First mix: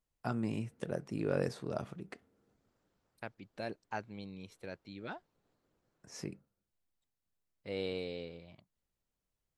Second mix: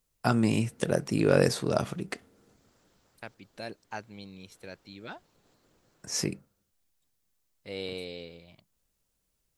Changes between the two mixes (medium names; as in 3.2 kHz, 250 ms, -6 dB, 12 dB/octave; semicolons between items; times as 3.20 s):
first voice +10.5 dB; master: add treble shelf 3.3 kHz +10 dB